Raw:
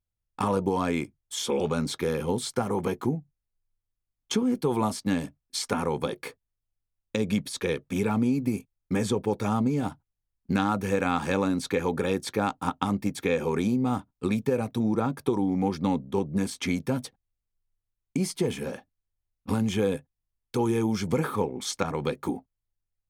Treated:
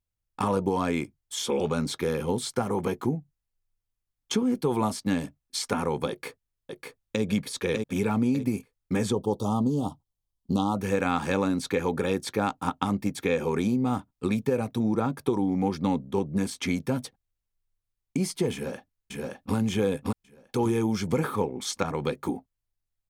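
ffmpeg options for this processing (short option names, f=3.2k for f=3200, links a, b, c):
-filter_complex "[0:a]asplit=2[a][b];[b]afade=t=in:st=6.09:d=0.01,afade=t=out:st=7.23:d=0.01,aecho=0:1:600|1200|1800|2400:0.630957|0.220835|0.0772923|0.0270523[c];[a][c]amix=inputs=2:normalize=0,asplit=3[d][e][f];[d]afade=t=out:st=9.12:d=0.02[g];[e]asuperstop=centerf=1900:order=12:qfactor=1.1,afade=t=in:st=9.12:d=0.02,afade=t=out:st=10.75:d=0.02[h];[f]afade=t=in:st=10.75:d=0.02[i];[g][h][i]amix=inputs=3:normalize=0,asplit=2[j][k];[k]afade=t=in:st=18.53:d=0.01,afade=t=out:st=19.55:d=0.01,aecho=0:1:570|1140|1710|2280:0.891251|0.267375|0.0802126|0.0240638[l];[j][l]amix=inputs=2:normalize=0"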